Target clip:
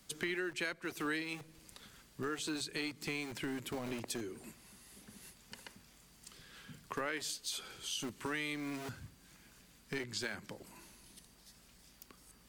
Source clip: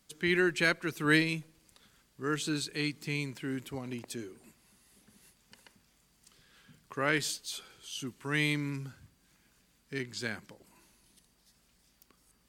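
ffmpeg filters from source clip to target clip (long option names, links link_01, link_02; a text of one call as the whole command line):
ffmpeg -i in.wav -filter_complex "[0:a]acrossover=split=180|1900[link_01][link_02][link_03];[link_01]aeval=exprs='(mod(168*val(0)+1,2)-1)/168':channel_layout=same[link_04];[link_04][link_02][link_03]amix=inputs=3:normalize=0,acompressor=threshold=-43dB:ratio=5,volume=6dB" out.wav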